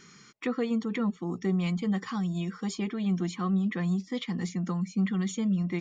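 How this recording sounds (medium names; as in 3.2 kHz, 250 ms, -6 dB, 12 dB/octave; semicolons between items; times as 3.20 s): noise floor -55 dBFS; spectral tilt -7.0 dB/octave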